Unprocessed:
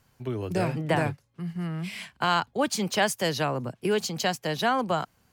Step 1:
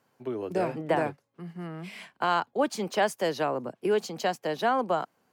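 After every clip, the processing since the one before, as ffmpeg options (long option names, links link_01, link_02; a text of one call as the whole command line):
ffmpeg -i in.wav -af "highpass=310,tiltshelf=frequency=1500:gain=6,volume=-3dB" out.wav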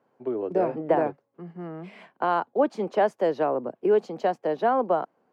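ffmpeg -i in.wav -af "bandpass=frequency=470:width_type=q:width=0.75:csg=0,volume=5dB" out.wav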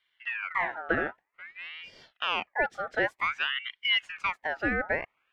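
ffmpeg -i in.wav -af "aeval=exprs='val(0)*sin(2*PI*1800*n/s+1800*0.45/0.53*sin(2*PI*0.53*n/s))':channel_layout=same,volume=-3dB" out.wav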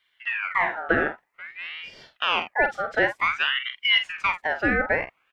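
ffmpeg -i in.wav -filter_complex "[0:a]asplit=2[link_01][link_02];[link_02]adelay=47,volume=-9dB[link_03];[link_01][link_03]amix=inputs=2:normalize=0,volume=5.5dB" out.wav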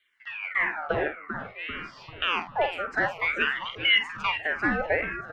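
ffmpeg -i in.wav -filter_complex "[0:a]asplit=2[link_01][link_02];[link_02]asplit=7[link_03][link_04][link_05][link_06][link_07][link_08][link_09];[link_03]adelay=393,afreqshift=-120,volume=-11.5dB[link_10];[link_04]adelay=786,afreqshift=-240,volume=-15.7dB[link_11];[link_05]adelay=1179,afreqshift=-360,volume=-19.8dB[link_12];[link_06]adelay=1572,afreqshift=-480,volume=-24dB[link_13];[link_07]adelay=1965,afreqshift=-600,volume=-28.1dB[link_14];[link_08]adelay=2358,afreqshift=-720,volume=-32.3dB[link_15];[link_09]adelay=2751,afreqshift=-840,volume=-36.4dB[link_16];[link_10][link_11][link_12][link_13][link_14][link_15][link_16]amix=inputs=7:normalize=0[link_17];[link_01][link_17]amix=inputs=2:normalize=0,asplit=2[link_18][link_19];[link_19]afreqshift=-1.8[link_20];[link_18][link_20]amix=inputs=2:normalize=1" out.wav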